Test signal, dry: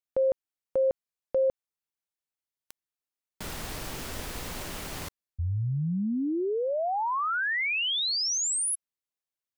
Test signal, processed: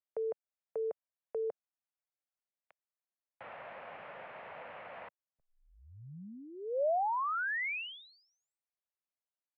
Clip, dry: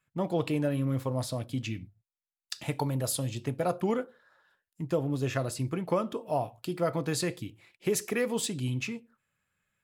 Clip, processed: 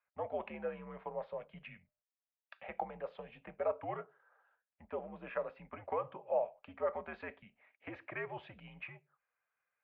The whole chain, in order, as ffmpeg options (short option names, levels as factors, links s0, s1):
-af "lowshelf=f=530:t=q:w=3:g=-8,highpass=f=230:t=q:w=0.5412,highpass=f=230:t=q:w=1.307,lowpass=f=2600:t=q:w=0.5176,lowpass=f=2600:t=q:w=0.7071,lowpass=f=2600:t=q:w=1.932,afreqshift=-86,volume=0.447"